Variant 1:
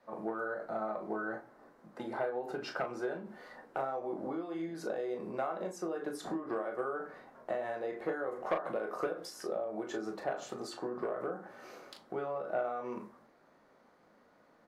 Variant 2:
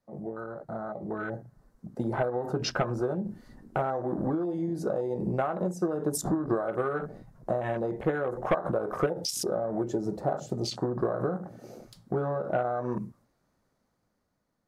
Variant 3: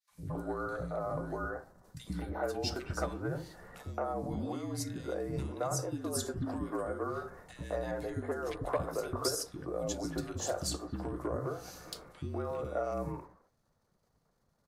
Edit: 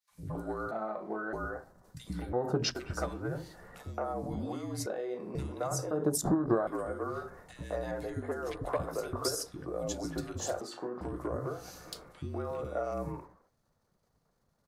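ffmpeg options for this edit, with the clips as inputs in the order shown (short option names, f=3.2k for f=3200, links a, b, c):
-filter_complex "[0:a]asplit=3[a][b][c];[1:a]asplit=2[d][e];[2:a]asplit=6[f][g][h][i][j][k];[f]atrim=end=0.712[l];[a]atrim=start=0.708:end=1.332[m];[g]atrim=start=1.328:end=2.332[n];[d]atrim=start=2.328:end=2.752[o];[h]atrim=start=2.748:end=4.862[p];[b]atrim=start=4.858:end=5.352[q];[i]atrim=start=5.348:end=5.912[r];[e]atrim=start=5.908:end=6.672[s];[j]atrim=start=6.668:end=10.612[t];[c]atrim=start=10.608:end=11.012[u];[k]atrim=start=11.008[v];[l][m]acrossfade=d=0.004:c1=hsin:c2=hsin[w];[w][n]acrossfade=d=0.004:c1=hsin:c2=hsin[x];[x][o]acrossfade=d=0.004:c1=hsin:c2=hsin[y];[y][p]acrossfade=d=0.004:c1=hsin:c2=hsin[z];[z][q]acrossfade=d=0.004:c1=hsin:c2=hsin[aa];[aa][r]acrossfade=d=0.004:c1=hsin:c2=hsin[ab];[ab][s]acrossfade=d=0.004:c1=hsin:c2=hsin[ac];[ac][t]acrossfade=d=0.004:c1=hsin:c2=hsin[ad];[ad][u]acrossfade=d=0.004:c1=hsin:c2=hsin[ae];[ae][v]acrossfade=d=0.004:c1=hsin:c2=hsin"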